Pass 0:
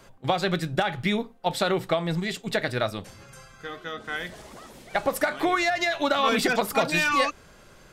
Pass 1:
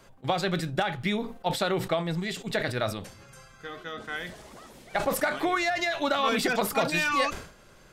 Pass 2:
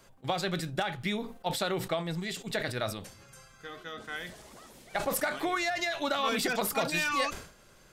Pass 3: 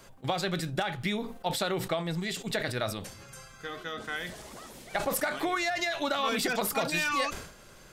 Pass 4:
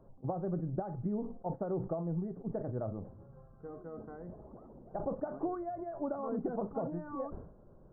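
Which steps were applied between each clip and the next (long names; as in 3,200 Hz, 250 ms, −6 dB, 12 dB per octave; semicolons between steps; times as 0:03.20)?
level that may fall only so fast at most 99 dB per second; level −3 dB
high-shelf EQ 4,500 Hz +6 dB; level −4.5 dB
downward compressor 1.5 to 1, threshold −40 dBFS, peak gain reduction 6 dB; level +5.5 dB
Gaussian smoothing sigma 11 samples; level −1.5 dB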